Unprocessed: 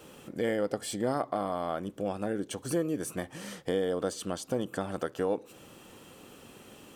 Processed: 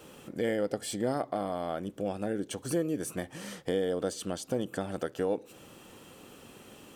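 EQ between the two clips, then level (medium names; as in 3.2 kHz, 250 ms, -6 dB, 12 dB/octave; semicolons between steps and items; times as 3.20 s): dynamic bell 1.1 kHz, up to -6 dB, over -50 dBFS, Q 2.4; 0.0 dB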